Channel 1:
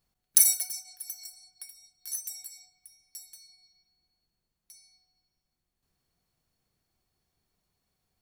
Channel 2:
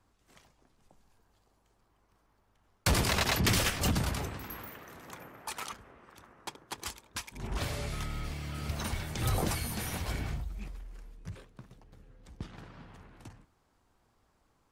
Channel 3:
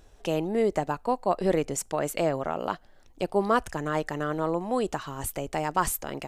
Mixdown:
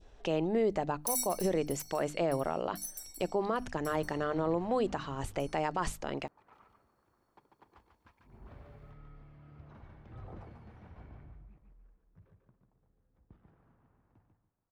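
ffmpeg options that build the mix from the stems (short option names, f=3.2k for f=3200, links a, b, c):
-filter_complex "[0:a]adelay=700,volume=-6.5dB[a];[1:a]lowpass=1.3k,adelay=900,volume=-17.5dB,asplit=2[b][c];[c]volume=-5dB[d];[2:a]lowpass=4.7k,bandreject=f=50:t=h:w=6,bandreject=f=100:t=h:w=6,bandreject=f=150:t=h:w=6,bandreject=f=200:t=h:w=6,bandreject=f=250:t=h:w=6,bandreject=f=300:t=h:w=6,adynamicequalizer=threshold=0.0112:dfrequency=1500:dqfactor=0.83:tfrequency=1500:tqfactor=0.83:attack=5:release=100:ratio=0.375:range=2:mode=cutabove:tftype=bell,volume=-1dB,asplit=2[e][f];[f]apad=whole_len=688673[g];[b][g]sidechaincompress=threshold=-41dB:ratio=8:attack=16:release=413[h];[d]aecho=0:1:144|288|432|576:1|0.25|0.0625|0.0156[i];[a][h][e][i]amix=inputs=4:normalize=0,alimiter=limit=-21dB:level=0:latency=1:release=47"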